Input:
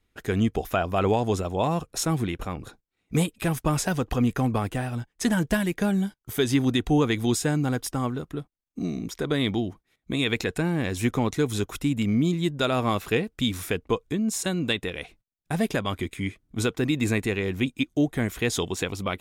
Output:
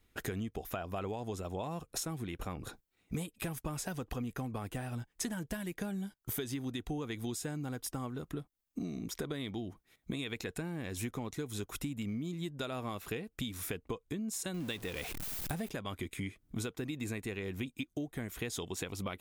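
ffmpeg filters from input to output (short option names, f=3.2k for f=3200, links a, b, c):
-filter_complex "[0:a]asettb=1/sr,asplit=3[a][b][c];[a]atrim=end=14.544[d];[b]atrim=start=14.54:end=15.7,asetpts=PTS-STARTPTS,afade=t=in:d=0.004:c=qsin,afade=t=out:st=1.156:d=0.004:c=qsin,aeval=exprs='val(0)+0.5*0.0224*sgn(val(0))':c=same[e];[c]atrim=start=15.696[f];[d][e]acrossfade=d=0.004:c1=hsin:c2=qsin[g];[g][f]acrossfade=d=0.004:c1=qsin:c2=hsin,highshelf=f=11k:g=9,acompressor=threshold=-37dB:ratio=10,volume=1.5dB"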